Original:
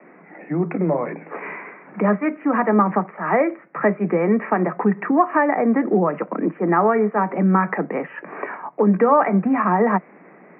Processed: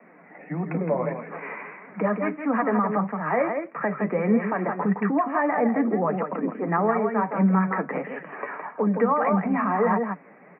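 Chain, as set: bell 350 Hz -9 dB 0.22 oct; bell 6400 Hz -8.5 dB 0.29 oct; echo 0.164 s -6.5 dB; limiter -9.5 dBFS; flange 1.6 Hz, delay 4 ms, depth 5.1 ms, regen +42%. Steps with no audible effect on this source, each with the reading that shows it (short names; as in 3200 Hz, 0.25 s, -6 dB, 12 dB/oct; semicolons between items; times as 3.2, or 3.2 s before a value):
bell 6400 Hz: input band ends at 2400 Hz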